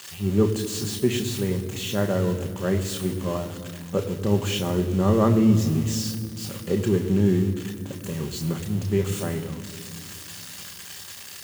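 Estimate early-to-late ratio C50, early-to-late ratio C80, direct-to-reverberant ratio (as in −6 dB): 10.5 dB, 11.0 dB, 4.0 dB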